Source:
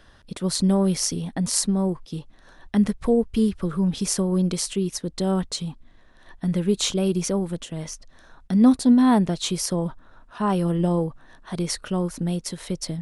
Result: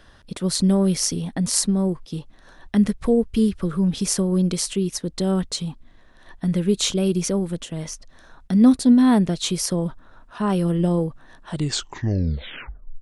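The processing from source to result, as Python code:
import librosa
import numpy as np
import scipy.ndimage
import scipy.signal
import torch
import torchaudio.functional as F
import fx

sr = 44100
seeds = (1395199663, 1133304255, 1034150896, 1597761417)

y = fx.tape_stop_end(x, sr, length_s=1.61)
y = fx.dynamic_eq(y, sr, hz=890.0, q=1.5, threshold_db=-40.0, ratio=4.0, max_db=-5)
y = F.gain(torch.from_numpy(y), 2.0).numpy()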